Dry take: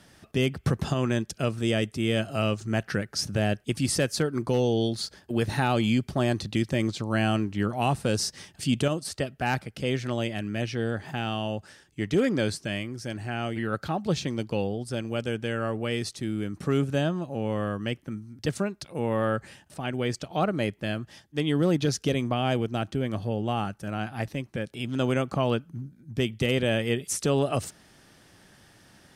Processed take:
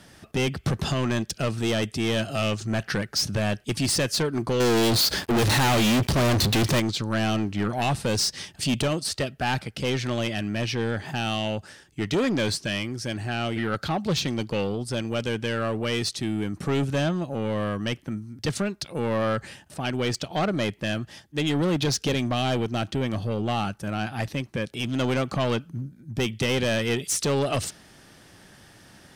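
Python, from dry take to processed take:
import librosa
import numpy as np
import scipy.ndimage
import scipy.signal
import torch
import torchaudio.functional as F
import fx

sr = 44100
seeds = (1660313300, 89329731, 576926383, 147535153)

y = fx.dynamic_eq(x, sr, hz=3800.0, q=0.81, threshold_db=-47.0, ratio=4.0, max_db=6)
y = 10.0 ** (-23.5 / 20.0) * np.tanh(y / 10.0 ** (-23.5 / 20.0))
y = fx.leveller(y, sr, passes=5, at=(4.6, 6.8))
y = y * librosa.db_to_amplitude(4.5)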